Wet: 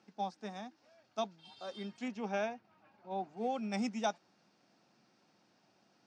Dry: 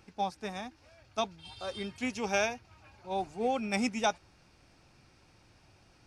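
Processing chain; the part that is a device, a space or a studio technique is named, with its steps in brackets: 2.08–3.37 s: tone controls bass +2 dB, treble -13 dB; television speaker (cabinet simulation 170–7200 Hz, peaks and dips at 210 Hz +6 dB, 690 Hz +4 dB, 2.4 kHz -5 dB); trim -7 dB

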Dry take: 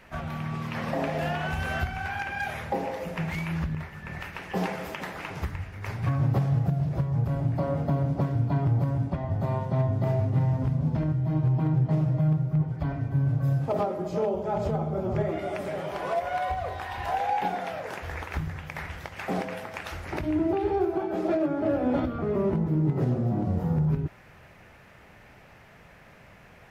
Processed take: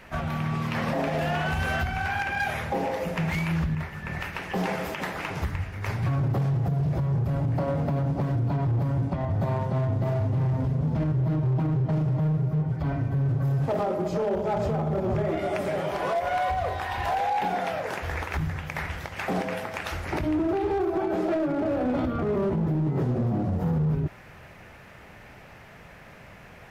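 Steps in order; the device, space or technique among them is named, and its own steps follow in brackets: limiter into clipper (peak limiter -22 dBFS, peak gain reduction 6.5 dB; hard clipper -25.5 dBFS, distortion -18 dB); trim +4.5 dB

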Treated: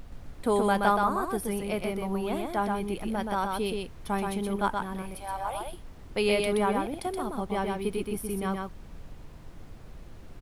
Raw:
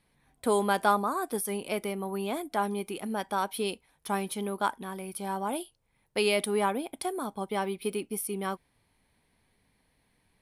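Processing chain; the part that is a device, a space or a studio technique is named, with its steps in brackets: 5.02–5.61 s: steep high-pass 540 Hz 36 dB/octave; car interior (peaking EQ 150 Hz +8.5 dB 0.54 oct; treble shelf 4.4 kHz -7 dB; brown noise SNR 12 dB); delay 125 ms -3.5 dB

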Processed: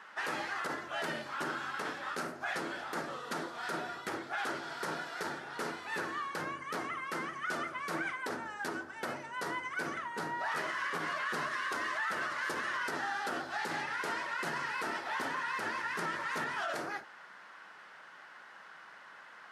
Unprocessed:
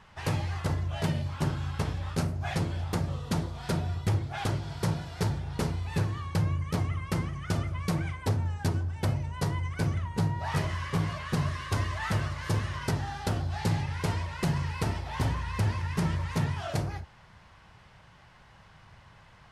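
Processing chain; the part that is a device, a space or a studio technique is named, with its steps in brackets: laptop speaker (high-pass 270 Hz 24 dB/octave; peaking EQ 1.4 kHz +10 dB 0.53 oct; peaking EQ 1.8 kHz +5 dB 0.31 oct; peak limiter -26.5 dBFS, peak gain reduction 10.5 dB)

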